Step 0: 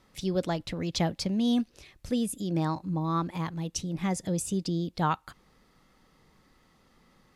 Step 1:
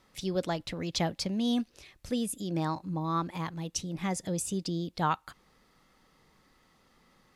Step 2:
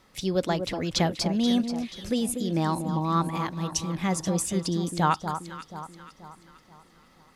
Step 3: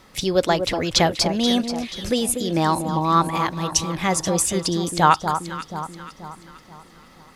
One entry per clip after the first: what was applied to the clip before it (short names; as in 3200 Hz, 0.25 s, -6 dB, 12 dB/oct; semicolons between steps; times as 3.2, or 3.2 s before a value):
low shelf 380 Hz -4.5 dB
echo with dull and thin repeats by turns 0.241 s, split 1300 Hz, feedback 65%, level -7.5 dB; gain +5 dB
dynamic EQ 200 Hz, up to -8 dB, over -40 dBFS, Q 1.1; gain +9 dB